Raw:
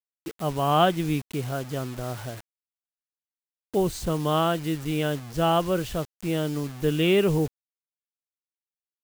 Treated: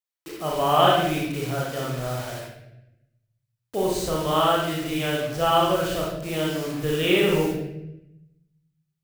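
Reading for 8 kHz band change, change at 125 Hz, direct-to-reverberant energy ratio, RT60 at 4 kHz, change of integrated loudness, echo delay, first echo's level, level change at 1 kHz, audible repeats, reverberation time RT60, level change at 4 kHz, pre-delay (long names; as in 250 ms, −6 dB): +4.0 dB, −1.5 dB, −4.0 dB, 0.70 s, +2.0 dB, no echo audible, no echo audible, +4.0 dB, no echo audible, 0.85 s, +5.5 dB, 31 ms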